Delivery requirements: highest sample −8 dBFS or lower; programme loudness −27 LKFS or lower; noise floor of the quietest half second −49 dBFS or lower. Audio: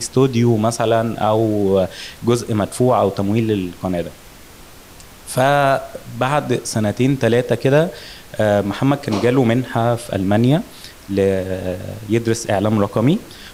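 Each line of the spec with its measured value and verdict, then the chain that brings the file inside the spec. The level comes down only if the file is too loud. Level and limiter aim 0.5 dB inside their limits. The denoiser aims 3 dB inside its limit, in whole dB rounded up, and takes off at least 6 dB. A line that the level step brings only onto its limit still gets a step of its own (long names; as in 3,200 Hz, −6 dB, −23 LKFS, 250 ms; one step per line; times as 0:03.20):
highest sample −3.5 dBFS: out of spec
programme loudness −18.0 LKFS: out of spec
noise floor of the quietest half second −41 dBFS: out of spec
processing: level −9.5 dB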